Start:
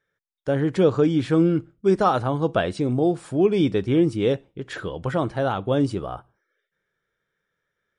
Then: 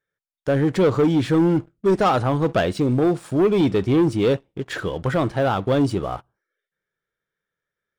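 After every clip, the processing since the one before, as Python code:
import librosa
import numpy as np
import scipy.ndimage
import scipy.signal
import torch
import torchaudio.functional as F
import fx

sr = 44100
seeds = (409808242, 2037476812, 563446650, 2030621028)

y = fx.leveller(x, sr, passes=2)
y = y * librosa.db_to_amplitude(-3.0)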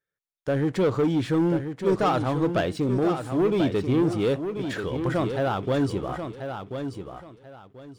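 y = fx.echo_feedback(x, sr, ms=1036, feedback_pct=24, wet_db=-8)
y = y * librosa.db_to_amplitude(-5.0)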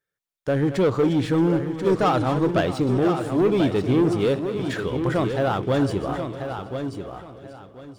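y = fx.reverse_delay_fb(x, sr, ms=314, feedback_pct=49, wet_db=-12.0)
y = y * librosa.db_to_amplitude(2.5)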